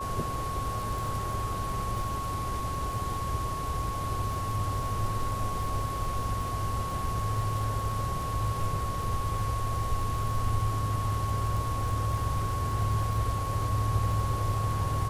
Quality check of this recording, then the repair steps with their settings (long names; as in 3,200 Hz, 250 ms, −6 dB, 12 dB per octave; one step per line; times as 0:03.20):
surface crackle 30 per second −34 dBFS
whistle 1,100 Hz −33 dBFS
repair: click removal
notch filter 1,100 Hz, Q 30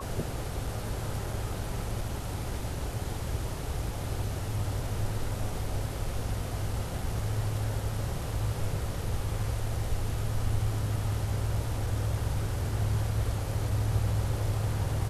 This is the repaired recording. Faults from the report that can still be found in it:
none of them is left